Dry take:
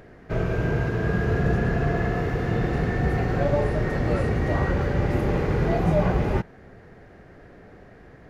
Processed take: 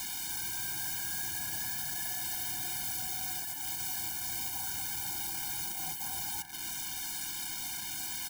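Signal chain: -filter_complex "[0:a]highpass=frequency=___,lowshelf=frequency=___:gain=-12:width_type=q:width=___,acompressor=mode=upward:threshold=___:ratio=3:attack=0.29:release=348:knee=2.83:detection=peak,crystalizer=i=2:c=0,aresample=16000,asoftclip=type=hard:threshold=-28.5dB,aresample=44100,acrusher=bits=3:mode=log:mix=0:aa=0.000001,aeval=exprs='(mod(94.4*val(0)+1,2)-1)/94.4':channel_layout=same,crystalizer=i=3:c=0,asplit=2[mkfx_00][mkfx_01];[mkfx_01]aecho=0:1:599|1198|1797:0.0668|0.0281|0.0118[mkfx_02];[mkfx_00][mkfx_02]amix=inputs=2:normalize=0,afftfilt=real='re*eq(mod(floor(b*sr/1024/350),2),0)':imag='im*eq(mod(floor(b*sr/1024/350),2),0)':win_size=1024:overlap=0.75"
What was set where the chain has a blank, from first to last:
67, 390, 1.5, -28dB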